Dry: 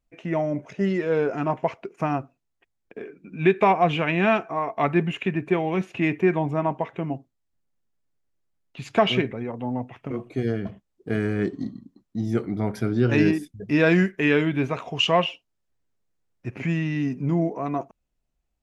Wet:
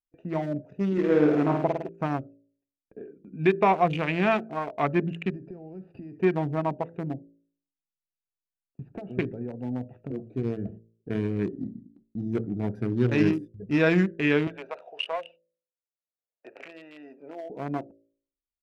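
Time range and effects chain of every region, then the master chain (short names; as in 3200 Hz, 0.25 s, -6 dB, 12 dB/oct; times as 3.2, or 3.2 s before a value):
0.92–1.89 bell 290 Hz +10 dB 0.33 oct + flutter echo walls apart 9.1 m, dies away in 0.91 s
5.3–6.2 compressor 16:1, threshold -32 dBFS + decimation joined by straight lines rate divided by 6×
7.14–9.19 LPF 1200 Hz + compressor 8:1, threshold -28 dBFS
14.47–17.5 Chebyshev band-pass 550–4900 Hz, order 3 + three-band squash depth 70%
whole clip: Wiener smoothing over 41 samples; gate with hold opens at -41 dBFS; de-hum 55.99 Hz, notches 11; gain -2 dB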